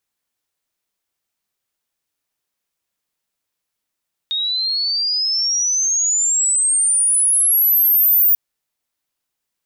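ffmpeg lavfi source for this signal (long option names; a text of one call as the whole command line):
ffmpeg -f lavfi -i "aevalsrc='pow(10,(-18+8*t/4.04)/20)*sin(2*PI*3700*4.04/log(15000/3700)*(exp(log(15000/3700)*t/4.04)-1))':duration=4.04:sample_rate=44100" out.wav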